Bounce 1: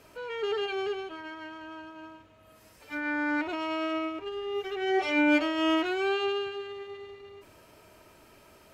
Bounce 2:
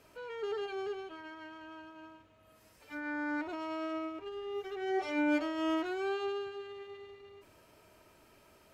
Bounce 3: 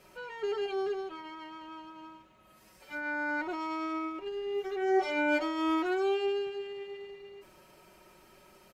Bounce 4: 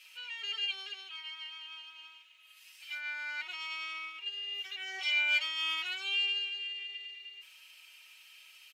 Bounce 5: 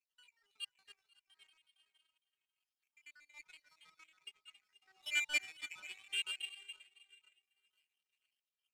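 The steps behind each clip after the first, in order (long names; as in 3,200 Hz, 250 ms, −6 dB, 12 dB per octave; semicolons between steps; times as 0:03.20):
dynamic equaliser 2,700 Hz, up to −7 dB, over −48 dBFS, Q 1.5; level −6 dB
comb filter 5.4 ms, depth 73%; level +2 dB
high-pass with resonance 2,800 Hz, resonance Q 3.9; level +2.5 dB
time-frequency cells dropped at random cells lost 68%; echo with a time of its own for lows and highs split 2,400 Hz, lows 487 ms, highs 274 ms, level −7 dB; power curve on the samples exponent 2; level +1 dB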